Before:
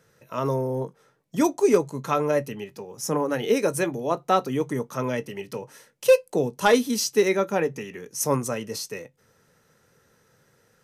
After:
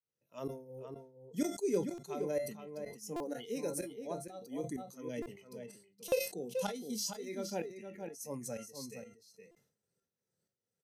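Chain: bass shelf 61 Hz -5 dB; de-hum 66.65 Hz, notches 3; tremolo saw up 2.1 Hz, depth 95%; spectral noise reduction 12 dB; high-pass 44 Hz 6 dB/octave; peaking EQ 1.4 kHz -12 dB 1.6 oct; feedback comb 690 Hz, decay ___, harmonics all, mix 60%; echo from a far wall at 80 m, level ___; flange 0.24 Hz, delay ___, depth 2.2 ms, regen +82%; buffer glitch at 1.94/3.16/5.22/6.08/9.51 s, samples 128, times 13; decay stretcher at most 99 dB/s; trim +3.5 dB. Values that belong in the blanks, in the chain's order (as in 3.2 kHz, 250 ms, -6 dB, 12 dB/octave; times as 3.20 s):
0.27 s, -7 dB, 3.3 ms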